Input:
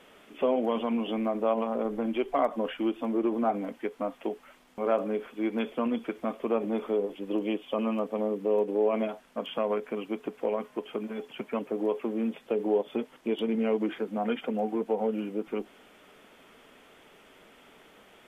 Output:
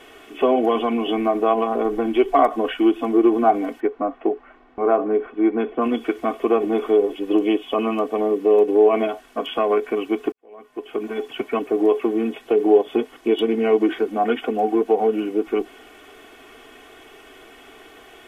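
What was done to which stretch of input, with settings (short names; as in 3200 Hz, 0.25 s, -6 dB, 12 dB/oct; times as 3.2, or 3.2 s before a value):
3.8–5.82 LPF 1500 Hz
10.32–11.09 fade in quadratic
whole clip: comb 2.7 ms, depth 76%; gain +8 dB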